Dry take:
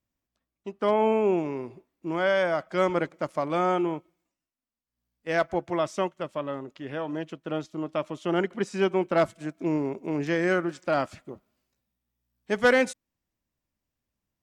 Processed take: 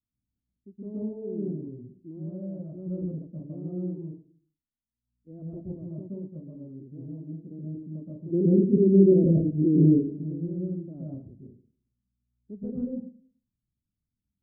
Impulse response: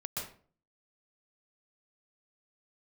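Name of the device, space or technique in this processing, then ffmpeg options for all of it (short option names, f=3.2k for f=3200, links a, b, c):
next room: -filter_complex "[0:a]asplit=3[a][b][c];[a]afade=t=out:st=8.32:d=0.02[d];[b]lowshelf=f=670:t=q:w=3:g=11.5,afade=t=in:st=8.32:d=0.02,afade=t=out:st=9.84:d=0.02[e];[c]afade=t=in:st=9.84:d=0.02[f];[d][e][f]amix=inputs=3:normalize=0,lowpass=f=300:w=0.5412,lowpass=f=300:w=1.3066[g];[1:a]atrim=start_sample=2205[h];[g][h]afir=irnorm=-1:irlink=0,volume=-3dB"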